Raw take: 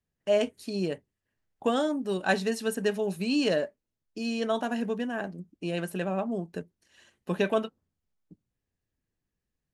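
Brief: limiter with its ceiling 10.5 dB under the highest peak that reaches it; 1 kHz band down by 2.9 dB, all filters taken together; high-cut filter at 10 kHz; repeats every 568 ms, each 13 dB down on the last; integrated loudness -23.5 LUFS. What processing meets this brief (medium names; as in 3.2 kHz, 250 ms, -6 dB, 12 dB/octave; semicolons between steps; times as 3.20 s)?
low-pass 10 kHz; peaking EQ 1 kHz -4.5 dB; peak limiter -23.5 dBFS; feedback delay 568 ms, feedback 22%, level -13 dB; trim +10.5 dB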